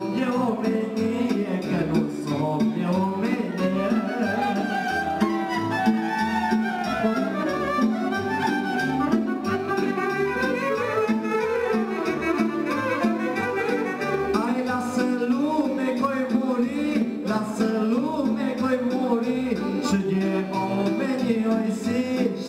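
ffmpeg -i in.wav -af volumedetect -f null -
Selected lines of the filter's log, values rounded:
mean_volume: -23.7 dB
max_volume: -9.6 dB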